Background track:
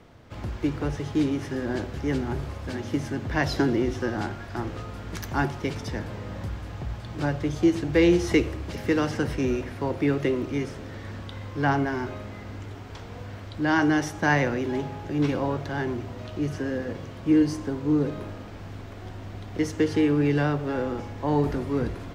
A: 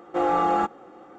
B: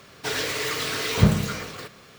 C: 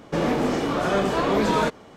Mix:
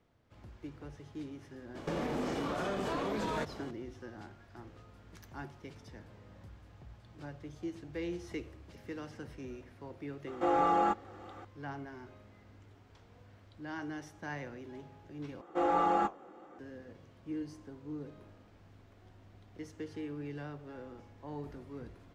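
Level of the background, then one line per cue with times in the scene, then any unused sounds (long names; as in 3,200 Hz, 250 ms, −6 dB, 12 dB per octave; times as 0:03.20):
background track −19.5 dB
0:01.75: mix in C −1.5 dB + downward compressor 8 to 1, threshold −30 dBFS
0:10.27: mix in A −6 dB + one half of a high-frequency compander encoder only
0:15.41: overwrite with A −2.5 dB + flanger 1.9 Hz, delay 5.2 ms, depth 9 ms, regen −67%
not used: B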